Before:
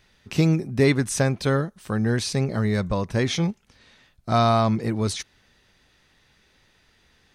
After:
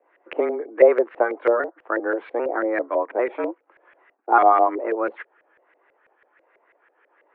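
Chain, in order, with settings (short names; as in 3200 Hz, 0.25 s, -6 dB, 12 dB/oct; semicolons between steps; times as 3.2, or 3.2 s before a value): trilling pitch shifter -2.5 st, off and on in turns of 0.398 s; mistuned SSB +120 Hz 240–2700 Hz; LFO low-pass saw up 6.1 Hz 530–2000 Hz; gain +2 dB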